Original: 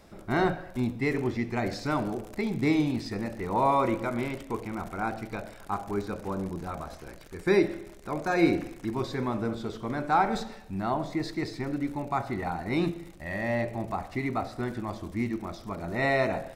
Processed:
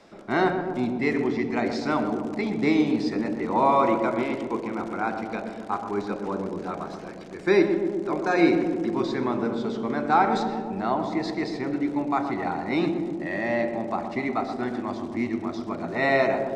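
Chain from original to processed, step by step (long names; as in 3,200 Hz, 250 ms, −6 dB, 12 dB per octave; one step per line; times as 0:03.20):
three-way crossover with the lows and the highs turned down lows −16 dB, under 180 Hz, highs −24 dB, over 7,500 Hz
on a send: feedback echo with a low-pass in the loop 124 ms, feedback 83%, low-pass 1,000 Hz, level −6 dB
on the sum: level +3.5 dB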